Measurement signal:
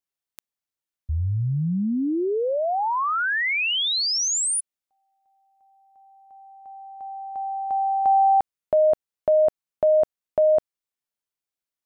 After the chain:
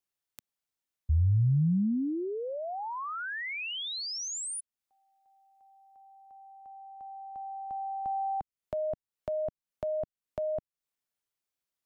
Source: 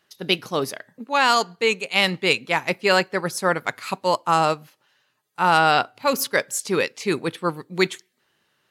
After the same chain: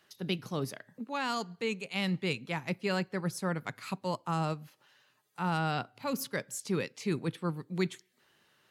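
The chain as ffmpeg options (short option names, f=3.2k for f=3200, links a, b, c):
-filter_complex "[0:a]acrossover=split=220[a][b];[b]acompressor=threshold=-59dB:ratio=1.5:attack=4.4:release=212:knee=2.83:detection=peak[c];[a][c]amix=inputs=2:normalize=0"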